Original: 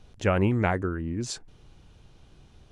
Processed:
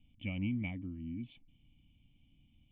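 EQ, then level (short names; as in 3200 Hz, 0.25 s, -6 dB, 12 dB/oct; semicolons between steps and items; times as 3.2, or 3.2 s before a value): vocal tract filter i; high shelf 2300 Hz +10 dB; fixed phaser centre 1500 Hz, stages 6; 0.0 dB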